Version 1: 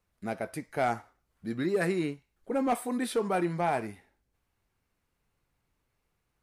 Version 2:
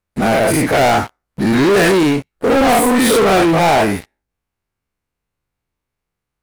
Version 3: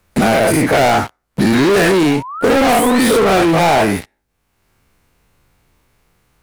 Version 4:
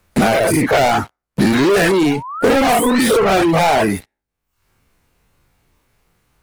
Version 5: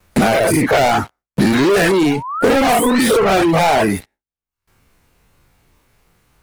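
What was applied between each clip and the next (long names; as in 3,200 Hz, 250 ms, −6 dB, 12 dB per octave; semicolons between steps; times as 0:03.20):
every bin's largest magnitude spread in time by 120 ms; leveller curve on the samples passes 5; level +3 dB
sound drawn into the spectrogram rise, 0:02.04–0:03.11, 660–5,500 Hz −32 dBFS; multiband upward and downward compressor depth 70%
reverb reduction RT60 0.75 s
noise gate with hold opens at −54 dBFS; in parallel at +1 dB: downward compressor, threshold −21 dBFS, peak gain reduction 11.5 dB; on the sum: level −2.5 dB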